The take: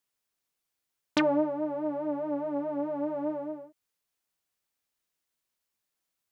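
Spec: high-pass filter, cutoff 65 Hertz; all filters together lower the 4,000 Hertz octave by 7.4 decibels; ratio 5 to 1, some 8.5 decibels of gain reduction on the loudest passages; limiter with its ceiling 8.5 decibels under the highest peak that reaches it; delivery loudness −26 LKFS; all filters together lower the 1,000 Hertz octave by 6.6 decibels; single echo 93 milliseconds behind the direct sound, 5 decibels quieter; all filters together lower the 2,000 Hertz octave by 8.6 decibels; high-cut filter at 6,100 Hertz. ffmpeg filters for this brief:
ffmpeg -i in.wav -af "highpass=65,lowpass=6100,equalizer=frequency=1000:width_type=o:gain=-6,equalizer=frequency=2000:width_type=o:gain=-8,equalizer=frequency=4000:width_type=o:gain=-5.5,acompressor=threshold=-32dB:ratio=5,alimiter=level_in=5.5dB:limit=-24dB:level=0:latency=1,volume=-5.5dB,aecho=1:1:93:0.562,volume=10.5dB" out.wav

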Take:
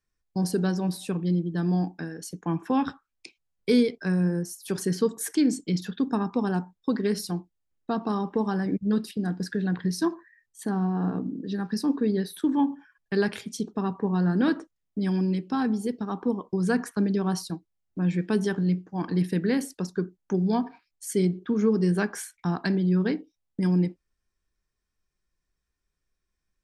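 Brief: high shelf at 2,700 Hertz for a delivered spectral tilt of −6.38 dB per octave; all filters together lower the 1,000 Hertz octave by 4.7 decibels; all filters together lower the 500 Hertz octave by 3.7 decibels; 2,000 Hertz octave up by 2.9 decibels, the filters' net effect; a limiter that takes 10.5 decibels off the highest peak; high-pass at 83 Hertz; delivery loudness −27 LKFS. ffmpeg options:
ffmpeg -i in.wav -af "highpass=83,equalizer=frequency=500:width_type=o:gain=-4,equalizer=frequency=1000:width_type=o:gain=-6,equalizer=frequency=2000:width_type=o:gain=8.5,highshelf=frequency=2700:gain=-5.5,volume=6dB,alimiter=limit=-18dB:level=0:latency=1" out.wav

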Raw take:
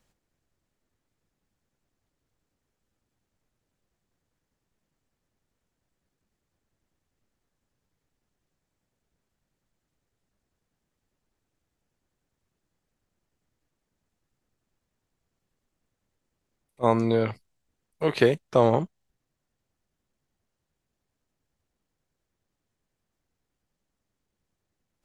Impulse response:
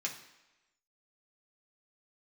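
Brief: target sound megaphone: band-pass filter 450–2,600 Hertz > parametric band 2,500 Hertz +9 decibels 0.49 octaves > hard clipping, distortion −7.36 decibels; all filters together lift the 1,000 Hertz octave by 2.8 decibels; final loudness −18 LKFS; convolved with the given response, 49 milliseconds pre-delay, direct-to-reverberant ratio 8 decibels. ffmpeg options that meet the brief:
-filter_complex "[0:a]equalizer=frequency=1000:width_type=o:gain=3.5,asplit=2[link_01][link_02];[1:a]atrim=start_sample=2205,adelay=49[link_03];[link_02][link_03]afir=irnorm=-1:irlink=0,volume=-10.5dB[link_04];[link_01][link_04]amix=inputs=2:normalize=0,highpass=450,lowpass=2600,equalizer=frequency=2500:width_type=o:width=0.49:gain=9,asoftclip=type=hard:threshold=-20dB,volume=10.5dB"

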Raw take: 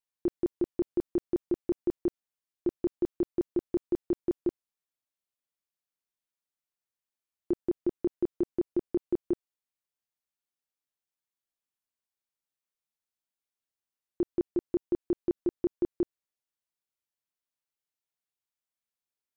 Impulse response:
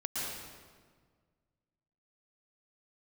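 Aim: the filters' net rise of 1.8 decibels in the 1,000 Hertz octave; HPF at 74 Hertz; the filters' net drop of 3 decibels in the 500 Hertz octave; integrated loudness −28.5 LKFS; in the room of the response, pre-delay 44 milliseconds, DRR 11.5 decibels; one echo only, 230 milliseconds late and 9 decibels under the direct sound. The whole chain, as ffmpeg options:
-filter_complex "[0:a]highpass=74,equalizer=frequency=500:width_type=o:gain=-6.5,equalizer=frequency=1000:width_type=o:gain=5,aecho=1:1:230:0.355,asplit=2[link_01][link_02];[1:a]atrim=start_sample=2205,adelay=44[link_03];[link_02][link_03]afir=irnorm=-1:irlink=0,volume=-16dB[link_04];[link_01][link_04]amix=inputs=2:normalize=0,volume=6.5dB"

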